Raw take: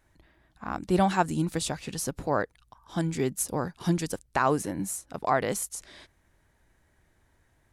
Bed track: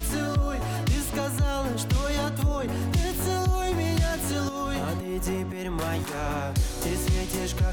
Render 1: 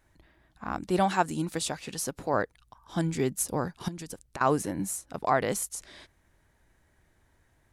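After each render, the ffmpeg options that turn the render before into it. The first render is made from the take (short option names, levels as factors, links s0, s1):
-filter_complex "[0:a]asettb=1/sr,asplit=3[s0][s1][s2];[s0]atrim=end=0.884[s3];[s1]atrim=start=0.88:end=2.34,asetpts=PTS-STARTPTS,afade=t=in:d=0.004:c=qsin,afade=t=out:st=1.456:d=0.004:c=qsin,lowshelf=f=170:g=-9.5[s4];[s2]atrim=start=2.336[s5];[s3][s4]acrossfade=d=0.004:c1=hsin:c2=qsin[s6];[s6][s5]acrossfade=d=0.004:c1=qsin:c2=hsin,asettb=1/sr,asplit=3[s7][s8][s9];[s7]atrim=end=3.884[s10];[s8]atrim=start=3.88:end=4.41,asetpts=PTS-STARTPTS,afade=t=in:d=0.004:c=qsin,afade=t=out:st=0.526:d=0.004:c=qsin,acompressor=threshold=0.0178:ratio=12:attack=3.2:release=140:knee=1:detection=peak[s11];[s9]atrim=start=4.406[s12];[s10][s11]acrossfade=d=0.004:c1=hsin:c2=qsin[s13];[s13][s12]acrossfade=d=0.004:c1=qsin:c2=hsin"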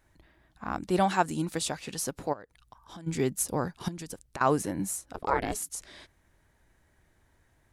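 -filter_complex "[0:a]asplit=3[s0][s1][s2];[s0]afade=t=out:st=2.32:d=0.02[s3];[s1]acompressor=threshold=0.00794:ratio=8:attack=3.2:release=140:knee=1:detection=peak,afade=t=in:st=2.32:d=0.02,afade=t=out:st=3.06:d=0.02[s4];[s2]afade=t=in:st=3.06:d=0.02[s5];[s3][s4][s5]amix=inputs=3:normalize=0,asettb=1/sr,asplit=3[s6][s7][s8];[s6]atrim=end=5.144[s9];[s7]atrim=start=5.14:end=5.69,asetpts=PTS-STARTPTS,afade=t=in:d=0.004:c=qsin,afade=t=out:st=0.546:d=0.004:c=qsin,aeval=exprs='val(0)*sin(2*PI*220*n/s)':c=same[s10];[s8]atrim=start=5.686[s11];[s9][s10]acrossfade=d=0.004:c1=hsin:c2=qsin[s12];[s12][s11]acrossfade=d=0.004:c1=qsin:c2=hsin"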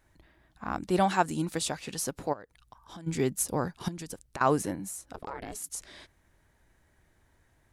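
-filter_complex "[0:a]asettb=1/sr,asplit=3[s0][s1][s2];[s0]atrim=end=4.744[s3];[s1]atrim=start=4.74:end=5.64,asetpts=PTS-STARTPTS,afade=t=in:d=0.004:c=qsin,afade=t=out:st=0.896:d=0.004:c=qsin,acompressor=threshold=0.0178:ratio=5:attack=3.2:release=140:knee=1:detection=peak[s4];[s2]atrim=start=5.636[s5];[s3][s4]acrossfade=d=0.004:c1=hsin:c2=qsin[s6];[s6][s5]acrossfade=d=0.004:c1=qsin:c2=hsin"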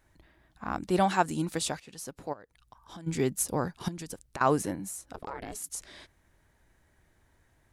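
-filter_complex "[0:a]asplit=2[s0][s1];[s0]atrim=end=1.8,asetpts=PTS-STARTPTS,afade=t=out:st=1.796:d=0.004:c=hsin:silence=0.223872[s2];[s1]atrim=start=1.8,asetpts=PTS-STARTPTS,afade=t=in:d=1.17:silence=0.223872[s3];[s2][s3]concat=n=2:v=0:a=1"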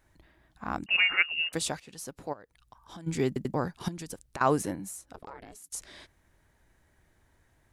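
-filter_complex "[0:a]asettb=1/sr,asplit=3[s0][s1][s2];[s0]atrim=end=0.864[s3];[s1]atrim=start=0.86:end=1.53,asetpts=PTS-STARTPTS,afade=t=in:d=0.004:c=qsin,afade=t=out:st=0.666:d=0.004:c=qsin,lowpass=f=2600:t=q:w=0.5098,lowpass=f=2600:t=q:w=0.6013,lowpass=f=2600:t=q:w=0.9,lowpass=f=2600:t=q:w=2.563,afreqshift=-3000[s4];[s2]atrim=start=1.526[s5];[s3][s4]acrossfade=d=0.004:c1=hsin:c2=qsin[s6];[s6][s5]acrossfade=d=0.004:c1=qsin:c2=hsin,asplit=5[s7][s8][s9][s10][s11];[s7]atrim=end=3.362[s12];[s8]atrim=start=3.268:end=3.362[s13];[s9]atrim=start=3.268:end=3.362[s14];[s10]atrim=start=3.538:end=5.72,asetpts=PTS-STARTPTS,afade=t=out:st=1.112:d=1.07:silence=0.199526[s15];[s11]atrim=start=5.72,asetpts=PTS-STARTPTS,afade=t=in:d=0.004:c=hsin:silence=0.199526[s16];[s12][s13]acrossfade=d=0.004:c1=hsin:c2=hsin[s17];[s17][s14]acrossfade=d=0.004:c1=hsin:c2=hsin[s18];[s15][s16]concat=n=2:v=0:a=1[s19];[s18][s19]acrossfade=d=0.004:c1=hsin:c2=hsin"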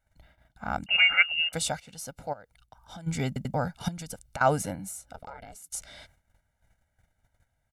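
-af "aecho=1:1:1.4:0.81,agate=range=0.224:threshold=0.00112:ratio=16:detection=peak"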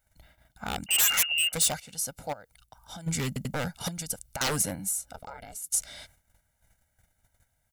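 -af "aeval=exprs='0.0631*(abs(mod(val(0)/0.0631+3,4)-2)-1)':c=same,crystalizer=i=2:c=0"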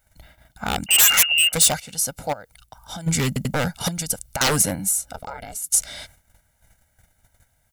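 -af "volume=2.66"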